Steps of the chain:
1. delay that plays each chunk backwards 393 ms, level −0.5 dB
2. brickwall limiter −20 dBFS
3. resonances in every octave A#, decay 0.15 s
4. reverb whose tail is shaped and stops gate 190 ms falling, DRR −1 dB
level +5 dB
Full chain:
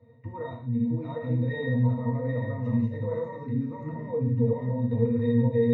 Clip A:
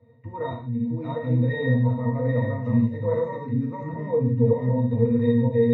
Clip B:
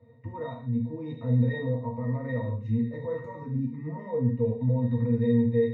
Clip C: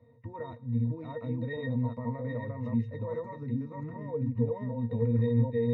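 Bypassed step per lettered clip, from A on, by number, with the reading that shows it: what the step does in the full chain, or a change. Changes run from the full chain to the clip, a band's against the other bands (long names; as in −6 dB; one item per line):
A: 2, average gain reduction 3.5 dB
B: 1, change in momentary loudness spread +2 LU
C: 4, 1 kHz band +2.0 dB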